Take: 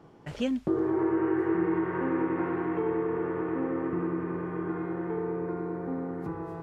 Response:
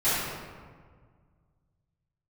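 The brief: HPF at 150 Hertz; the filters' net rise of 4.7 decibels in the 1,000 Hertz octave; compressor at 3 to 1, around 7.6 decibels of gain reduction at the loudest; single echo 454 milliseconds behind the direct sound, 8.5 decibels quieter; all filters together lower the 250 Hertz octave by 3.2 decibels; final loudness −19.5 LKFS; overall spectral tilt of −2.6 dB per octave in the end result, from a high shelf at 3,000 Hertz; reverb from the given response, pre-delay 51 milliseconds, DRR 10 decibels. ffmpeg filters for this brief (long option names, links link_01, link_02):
-filter_complex "[0:a]highpass=150,equalizer=frequency=250:width_type=o:gain=-5,equalizer=frequency=1000:width_type=o:gain=5,highshelf=frequency=3000:gain=6.5,acompressor=threshold=-35dB:ratio=3,aecho=1:1:454:0.376,asplit=2[link_01][link_02];[1:a]atrim=start_sample=2205,adelay=51[link_03];[link_02][link_03]afir=irnorm=-1:irlink=0,volume=-24.5dB[link_04];[link_01][link_04]amix=inputs=2:normalize=0,volume=16.5dB"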